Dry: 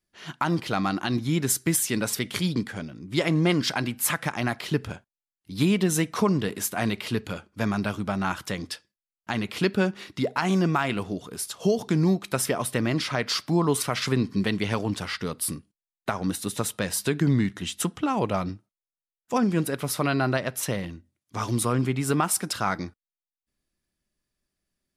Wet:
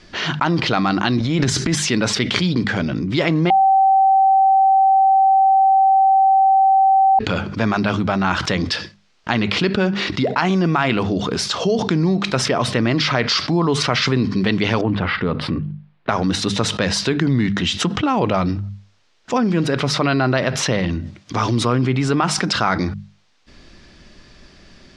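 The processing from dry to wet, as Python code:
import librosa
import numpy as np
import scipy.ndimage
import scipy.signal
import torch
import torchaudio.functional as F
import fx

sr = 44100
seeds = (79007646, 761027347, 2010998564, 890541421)

y = fx.transient(x, sr, attack_db=-10, sustain_db=12, at=(1.19, 1.77))
y = fx.air_absorb(y, sr, metres=470.0, at=(14.81, 16.09))
y = fx.edit(y, sr, fx.bleep(start_s=3.5, length_s=3.69, hz=773.0, db=-7.5), tone=tone)
y = scipy.signal.sosfilt(scipy.signal.butter(4, 5500.0, 'lowpass', fs=sr, output='sos'), y)
y = fx.hum_notches(y, sr, base_hz=50, count=4)
y = fx.env_flatten(y, sr, amount_pct=70)
y = F.gain(torch.from_numpy(y), -2.5).numpy()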